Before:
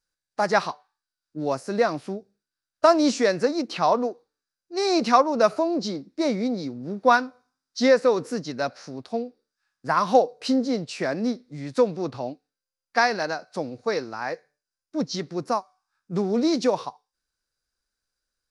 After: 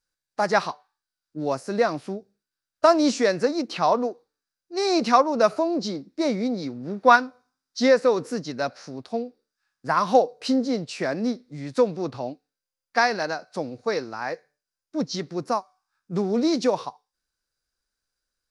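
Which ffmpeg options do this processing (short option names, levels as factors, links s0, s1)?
-filter_complex "[0:a]asettb=1/sr,asplit=3[s0][s1][s2];[s0]atrim=end=6.624[s3];[s1]atrim=start=6.62:end=7.16,asetpts=PTS-STARTPTS,afade=t=in:d=0.004:c=qsin,afade=t=out:st=0.536:d=0.004:c=qsin,equalizer=f=1800:t=o:w=2.1:g=5[s4];[s2]atrim=start=7.156[s5];[s3][s4]acrossfade=d=0.004:c1=hsin:c2=qsin[s6];[s6][s5]acrossfade=d=0.004:c1=qsin:c2=hsin"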